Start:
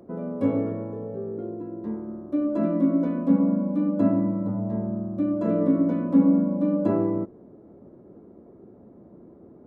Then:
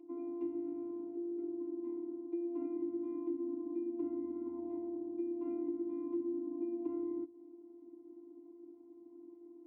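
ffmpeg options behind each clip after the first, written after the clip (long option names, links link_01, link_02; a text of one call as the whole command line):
ffmpeg -i in.wav -filter_complex "[0:a]afftfilt=real='hypot(re,im)*cos(PI*b)':imag='0':win_size=512:overlap=0.75,asplit=3[link_01][link_02][link_03];[link_01]bandpass=frequency=300:width_type=q:width=8,volume=0dB[link_04];[link_02]bandpass=frequency=870:width_type=q:width=8,volume=-6dB[link_05];[link_03]bandpass=frequency=2240:width_type=q:width=8,volume=-9dB[link_06];[link_04][link_05][link_06]amix=inputs=3:normalize=0,acrossover=split=130[link_07][link_08];[link_08]acompressor=threshold=-42dB:ratio=6[link_09];[link_07][link_09]amix=inputs=2:normalize=0,volume=5.5dB" out.wav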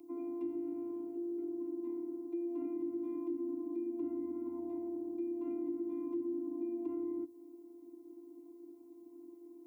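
ffmpeg -i in.wav -filter_complex "[0:a]acrossover=split=210|350[link_01][link_02][link_03];[link_03]alimiter=level_in=19dB:limit=-24dB:level=0:latency=1:release=38,volume=-19dB[link_04];[link_01][link_02][link_04]amix=inputs=3:normalize=0,crystalizer=i=3:c=0,volume=1dB" out.wav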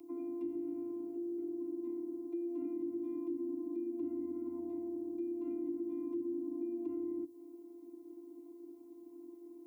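ffmpeg -i in.wav -filter_complex "[0:a]acrossover=split=390|3000[link_01][link_02][link_03];[link_02]acompressor=threshold=-53dB:ratio=4[link_04];[link_01][link_04][link_03]amix=inputs=3:normalize=0,volume=1.5dB" out.wav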